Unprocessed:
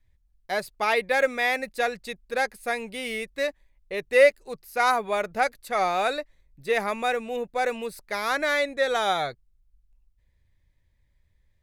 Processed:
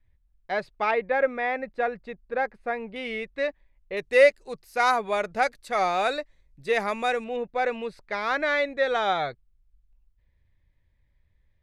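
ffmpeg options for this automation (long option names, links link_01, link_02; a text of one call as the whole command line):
ffmpeg -i in.wav -af "asetnsamples=nb_out_samples=441:pad=0,asendcmd='0.91 lowpass f 1600;2.96 lowpass f 3000;3.97 lowpass f 8200;7.24 lowpass f 3500',lowpass=2900" out.wav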